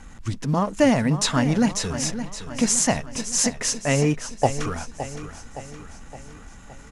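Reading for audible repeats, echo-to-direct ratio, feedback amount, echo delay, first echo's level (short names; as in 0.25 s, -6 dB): 5, -10.0 dB, 53%, 0.566 s, -11.5 dB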